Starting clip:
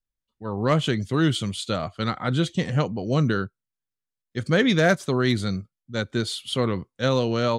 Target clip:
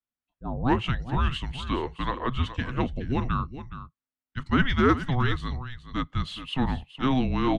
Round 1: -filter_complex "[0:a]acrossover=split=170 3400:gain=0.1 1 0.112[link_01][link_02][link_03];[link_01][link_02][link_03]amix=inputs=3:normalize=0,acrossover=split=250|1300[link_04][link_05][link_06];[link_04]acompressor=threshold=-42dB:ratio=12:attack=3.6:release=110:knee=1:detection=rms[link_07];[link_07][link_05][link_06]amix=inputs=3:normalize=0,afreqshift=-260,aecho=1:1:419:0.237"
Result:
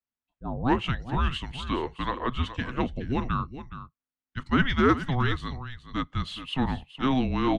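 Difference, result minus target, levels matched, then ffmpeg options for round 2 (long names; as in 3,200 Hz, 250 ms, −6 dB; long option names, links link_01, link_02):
downward compressor: peak gain reduction +10.5 dB
-filter_complex "[0:a]acrossover=split=170 3400:gain=0.1 1 0.112[link_01][link_02][link_03];[link_01][link_02][link_03]amix=inputs=3:normalize=0,acrossover=split=250|1300[link_04][link_05][link_06];[link_04]acompressor=threshold=-30.5dB:ratio=12:attack=3.6:release=110:knee=1:detection=rms[link_07];[link_07][link_05][link_06]amix=inputs=3:normalize=0,afreqshift=-260,aecho=1:1:419:0.237"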